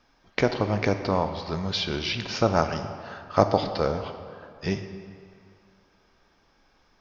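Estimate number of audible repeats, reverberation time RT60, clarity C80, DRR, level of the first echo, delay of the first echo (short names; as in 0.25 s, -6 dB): none, 2.4 s, 10.0 dB, 8.0 dB, none, none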